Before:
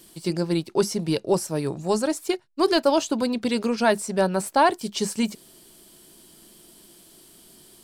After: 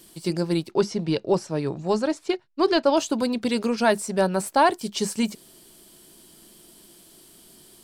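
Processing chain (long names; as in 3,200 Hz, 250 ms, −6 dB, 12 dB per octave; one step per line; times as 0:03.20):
0:00.71–0:02.97: low-pass filter 4,800 Hz 12 dB per octave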